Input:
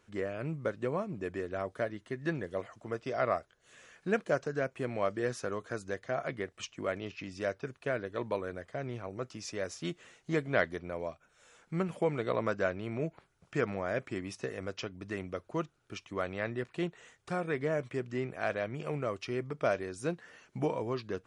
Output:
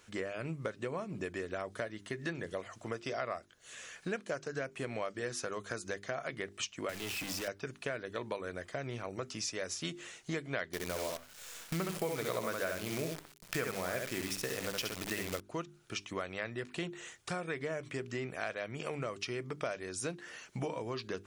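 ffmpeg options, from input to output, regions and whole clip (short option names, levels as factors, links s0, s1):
-filter_complex "[0:a]asettb=1/sr,asplit=3[s0][s1][s2];[s0]atrim=end=6.894[s3];[s1]atrim=start=6.89:end=7.48,asetpts=PTS-STARTPTS,afade=t=in:d=0.004:c=qsin,afade=t=out:st=0.586:d=0.004:c=qsin,aeval=exprs='val(0)+0.5*0.0188*sgn(val(0))':c=same,acrossover=split=280|1200[s4][s5][s6];[s4]acompressor=threshold=0.00631:ratio=4[s7];[s5]acompressor=threshold=0.00891:ratio=4[s8];[s6]acompressor=threshold=0.00794:ratio=4[s9];[s7][s8][s9]amix=inputs=3:normalize=0[s10];[s2]atrim=start=7.476[s11];[s3][s10]acrossfade=d=0.004:c1=hsin:c2=qsin[s12];[s12][s11]acrossfade=d=0.004:c1=qsin:c2=hsin,asettb=1/sr,asplit=3[s13][s14][s15];[s13]atrim=end=10.734[s16];[s14]atrim=start=10.73:end=15.4,asetpts=PTS-STARTPTS,afade=t=in:d=0.004:c=qsin,afade=t=out:st=4.666:d=0.004:c=qsin,acontrast=44,aecho=1:1:67|134|201:0.631|0.114|0.0204,atrim=end_sample=205947,acrusher=bits=7:dc=4:mix=0:aa=0.000001[s17];[s15]atrim=start=15.396[s18];[s16][s17]acrossfade=d=0.004:c1=hsin:c2=qsin[s19];[s19][s18]acrossfade=d=0.004:c1=qsin:c2=hsin,highshelf=f=2100:g=10,bandreject=f=50:t=h:w=6,bandreject=f=100:t=h:w=6,bandreject=f=150:t=h:w=6,bandreject=f=200:t=h:w=6,bandreject=f=250:t=h:w=6,bandreject=f=300:t=h:w=6,bandreject=f=350:t=h:w=6,bandreject=f=400:t=h:w=6,acompressor=threshold=0.0126:ratio=4,volume=1.33"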